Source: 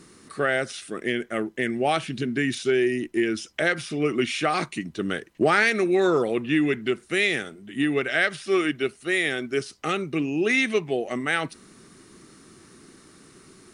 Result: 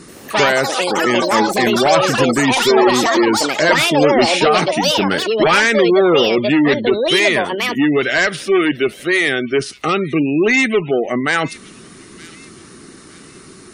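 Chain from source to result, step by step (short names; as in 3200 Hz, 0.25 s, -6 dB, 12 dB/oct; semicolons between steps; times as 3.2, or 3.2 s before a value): added harmonics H 4 -14 dB, 5 -6 dB, 6 -26 dB, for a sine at -7.5 dBFS; echoes that change speed 83 ms, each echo +7 st, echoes 3; on a send: thin delay 0.916 s, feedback 36%, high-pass 3000 Hz, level -15 dB; on the sum: spectral gate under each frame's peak -30 dB strong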